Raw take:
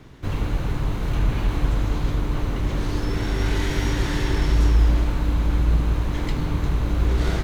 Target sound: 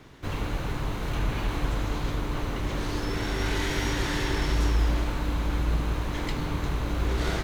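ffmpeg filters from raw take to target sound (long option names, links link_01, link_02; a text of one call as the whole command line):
ffmpeg -i in.wav -af "lowshelf=frequency=290:gain=-7.5" out.wav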